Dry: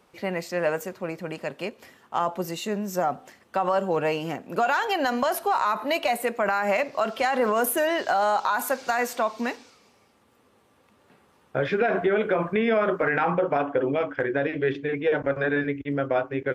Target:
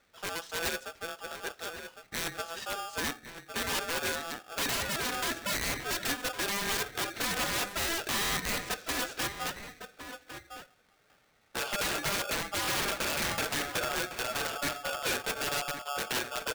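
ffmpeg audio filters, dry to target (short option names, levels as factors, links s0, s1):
-filter_complex "[0:a]lowpass=f=6300:w=0.5412,lowpass=f=6300:w=1.3066,lowshelf=f=350:g=-3.5,aeval=exprs='(mod(9.44*val(0)+1,2)-1)/9.44':c=same,asplit=2[s0][s1];[s1]adelay=1108,volume=0.398,highshelf=f=4000:g=-24.9[s2];[s0][s2]amix=inputs=2:normalize=0,aeval=exprs='val(0)*sgn(sin(2*PI*1000*n/s))':c=same,volume=0.473"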